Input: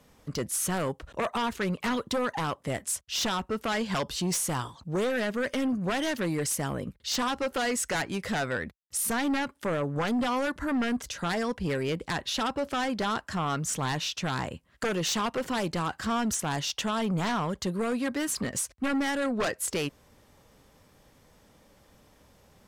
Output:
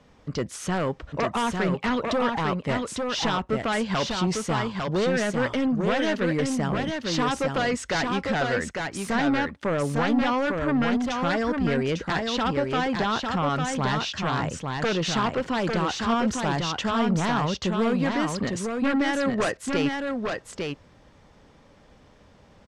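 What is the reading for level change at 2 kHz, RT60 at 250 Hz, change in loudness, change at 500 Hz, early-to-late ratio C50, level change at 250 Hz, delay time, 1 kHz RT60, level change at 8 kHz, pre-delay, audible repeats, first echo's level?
+4.5 dB, no reverb, +4.0 dB, +5.0 dB, no reverb, +5.5 dB, 851 ms, no reverb, -5.0 dB, no reverb, 1, -4.0 dB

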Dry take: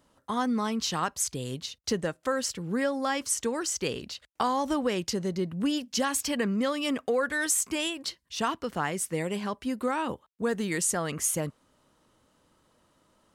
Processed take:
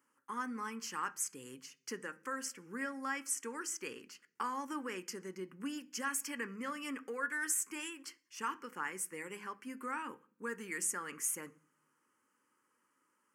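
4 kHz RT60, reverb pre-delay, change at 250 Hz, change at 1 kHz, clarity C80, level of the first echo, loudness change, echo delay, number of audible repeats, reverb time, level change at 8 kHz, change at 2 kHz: 0.50 s, 3 ms, -14.5 dB, -9.5 dB, 25.5 dB, no echo, -10.5 dB, no echo, no echo, 0.50 s, -8.0 dB, -6.0 dB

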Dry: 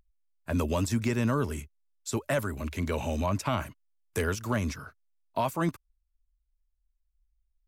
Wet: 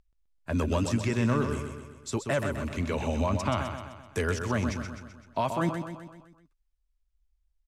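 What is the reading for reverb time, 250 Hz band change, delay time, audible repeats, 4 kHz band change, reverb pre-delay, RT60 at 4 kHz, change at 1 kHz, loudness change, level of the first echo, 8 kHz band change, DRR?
no reverb, +1.0 dB, 128 ms, 6, +1.0 dB, no reverb, no reverb, +1.0 dB, +0.5 dB, -7.0 dB, -1.5 dB, no reverb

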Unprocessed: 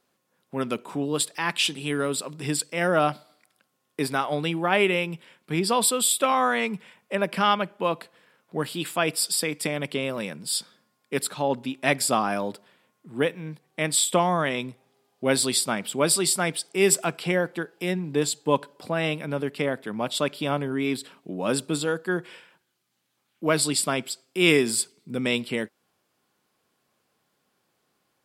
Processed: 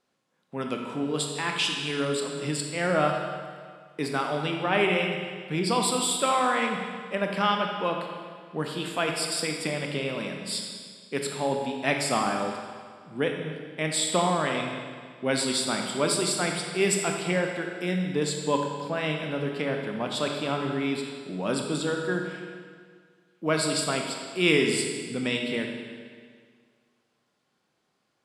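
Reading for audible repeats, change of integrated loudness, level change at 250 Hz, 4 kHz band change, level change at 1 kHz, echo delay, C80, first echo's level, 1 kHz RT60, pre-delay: no echo, -2.5 dB, -1.5 dB, -1.5 dB, -1.5 dB, no echo, 4.5 dB, no echo, 1.9 s, 23 ms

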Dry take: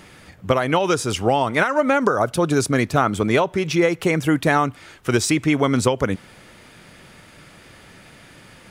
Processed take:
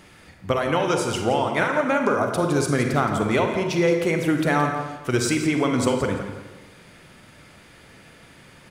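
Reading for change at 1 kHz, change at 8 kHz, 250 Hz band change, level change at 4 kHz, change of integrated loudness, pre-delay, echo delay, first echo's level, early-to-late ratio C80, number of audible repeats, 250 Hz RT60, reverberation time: -3.0 dB, -3.5 dB, -2.0 dB, -3.0 dB, -2.5 dB, 35 ms, 170 ms, -11.0 dB, 5.5 dB, 2, 1.2 s, 1.2 s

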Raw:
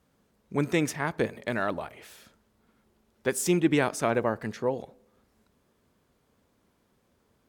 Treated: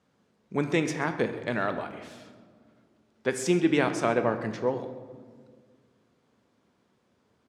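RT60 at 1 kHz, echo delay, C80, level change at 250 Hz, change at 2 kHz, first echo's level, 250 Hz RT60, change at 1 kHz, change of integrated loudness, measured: 1.6 s, 132 ms, 11.5 dB, +0.5 dB, +0.5 dB, -18.5 dB, 2.5 s, +1.0 dB, 0.0 dB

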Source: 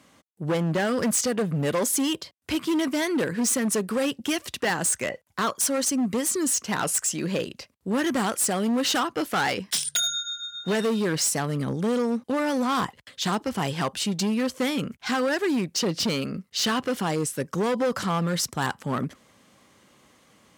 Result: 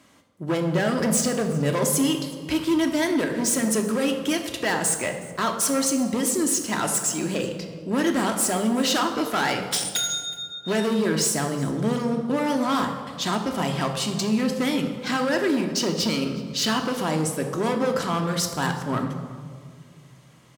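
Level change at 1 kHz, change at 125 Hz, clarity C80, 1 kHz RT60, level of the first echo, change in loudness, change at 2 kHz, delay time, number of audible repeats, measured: +1.5 dB, +2.0 dB, 8.5 dB, 1.7 s, -22.0 dB, +1.5 dB, +1.0 dB, 369 ms, 1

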